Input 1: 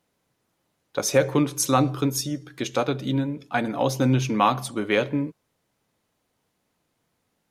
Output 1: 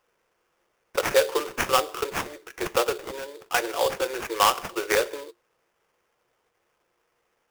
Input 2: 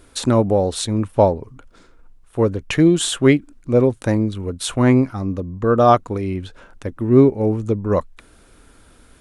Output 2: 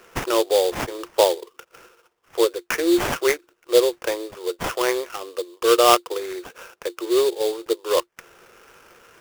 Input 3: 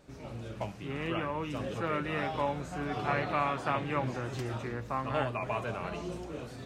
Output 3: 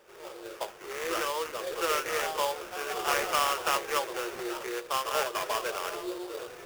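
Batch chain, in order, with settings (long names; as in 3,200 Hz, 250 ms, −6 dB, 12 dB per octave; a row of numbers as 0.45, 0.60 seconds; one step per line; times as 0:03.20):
in parallel at +1.5 dB: downward compressor, threshold −26 dBFS
on the sum: Chebyshev high-pass with heavy ripple 340 Hz, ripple 6 dB
sample-rate reduction 4,100 Hz, jitter 20%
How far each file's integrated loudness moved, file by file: −1.5, −3.5, +3.0 LU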